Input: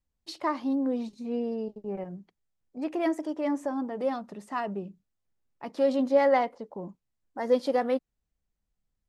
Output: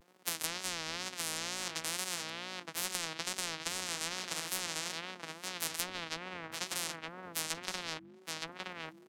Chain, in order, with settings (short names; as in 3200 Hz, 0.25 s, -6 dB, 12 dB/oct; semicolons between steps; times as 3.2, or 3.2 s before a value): sample sorter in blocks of 256 samples; HPF 220 Hz 24 dB/oct; notches 50/100/150/200/250/300/350 Hz; treble ducked by the level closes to 400 Hz, closed at -21.5 dBFS; in parallel at +0.5 dB: compressor, threshold -34 dBFS, peak gain reduction 11.5 dB; on the sum: wow and flutter 130 cents; on a send: echo 0.918 s -15.5 dB; on the sum: spectral compressor 10:1